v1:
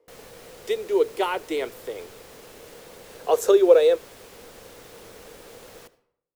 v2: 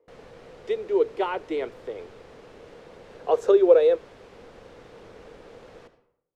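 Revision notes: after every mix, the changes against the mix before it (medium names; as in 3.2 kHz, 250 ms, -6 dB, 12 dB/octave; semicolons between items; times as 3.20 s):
background: send +6.0 dB; master: add tape spacing loss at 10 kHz 23 dB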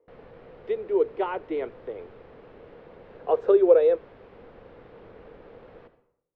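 master: add distance through air 380 m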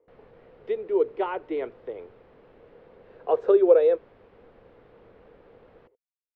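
background -4.5 dB; reverb: off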